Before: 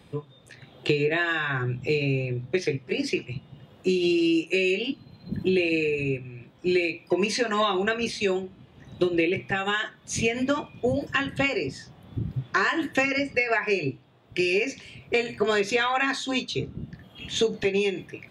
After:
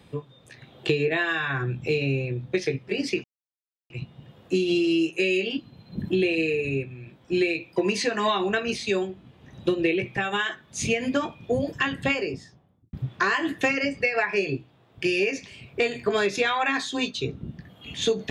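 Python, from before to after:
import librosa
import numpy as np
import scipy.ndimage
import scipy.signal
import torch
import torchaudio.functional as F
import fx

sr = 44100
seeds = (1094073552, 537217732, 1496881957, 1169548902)

y = fx.studio_fade_out(x, sr, start_s=11.45, length_s=0.82)
y = fx.edit(y, sr, fx.insert_silence(at_s=3.24, length_s=0.66), tone=tone)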